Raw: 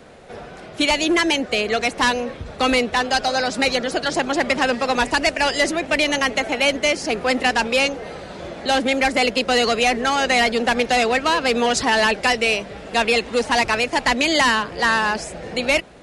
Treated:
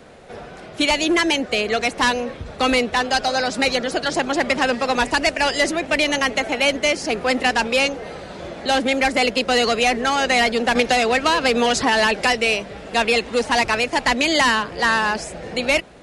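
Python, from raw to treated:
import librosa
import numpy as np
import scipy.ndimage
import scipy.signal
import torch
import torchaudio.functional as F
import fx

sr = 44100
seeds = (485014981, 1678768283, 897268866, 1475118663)

y = fx.band_squash(x, sr, depth_pct=100, at=(10.75, 12.25))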